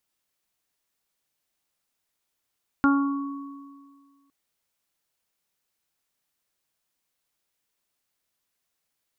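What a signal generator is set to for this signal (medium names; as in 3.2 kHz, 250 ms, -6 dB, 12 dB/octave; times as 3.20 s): additive tone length 1.46 s, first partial 279 Hz, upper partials -20/-12/-8.5/-4.5 dB, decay 1.83 s, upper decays 0.56/0.70/1.90/0.52 s, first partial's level -16 dB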